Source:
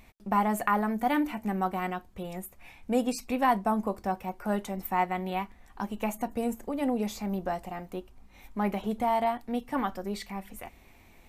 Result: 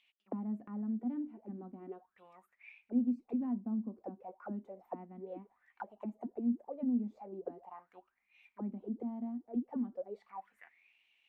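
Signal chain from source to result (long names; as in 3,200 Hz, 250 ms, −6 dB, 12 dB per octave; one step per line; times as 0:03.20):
envelope filter 240–3,300 Hz, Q 10, down, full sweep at −26 dBFS
level +1.5 dB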